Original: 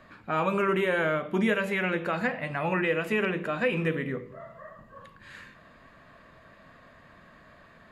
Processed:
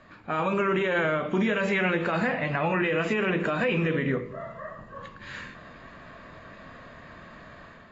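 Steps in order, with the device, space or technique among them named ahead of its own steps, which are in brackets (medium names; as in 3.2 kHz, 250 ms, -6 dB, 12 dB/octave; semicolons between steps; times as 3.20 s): low-bitrate web radio (level rider gain up to 6.5 dB; peak limiter -17.5 dBFS, peak gain reduction 9.5 dB; AAC 24 kbps 22.05 kHz)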